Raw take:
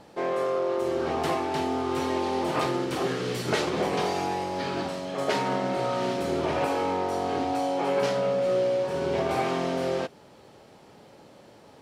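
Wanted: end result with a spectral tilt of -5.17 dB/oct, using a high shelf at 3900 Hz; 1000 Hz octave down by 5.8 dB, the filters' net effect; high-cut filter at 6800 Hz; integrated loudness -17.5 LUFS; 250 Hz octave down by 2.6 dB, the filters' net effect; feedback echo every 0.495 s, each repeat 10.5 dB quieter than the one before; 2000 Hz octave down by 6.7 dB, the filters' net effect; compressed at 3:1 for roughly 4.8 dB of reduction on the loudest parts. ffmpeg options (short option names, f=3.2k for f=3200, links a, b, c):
-af "lowpass=6.8k,equalizer=f=250:t=o:g=-3,equalizer=f=1k:t=o:g=-6.5,equalizer=f=2k:t=o:g=-7.5,highshelf=f=3.9k:g=4,acompressor=threshold=-30dB:ratio=3,aecho=1:1:495|990|1485:0.299|0.0896|0.0269,volume=15.5dB"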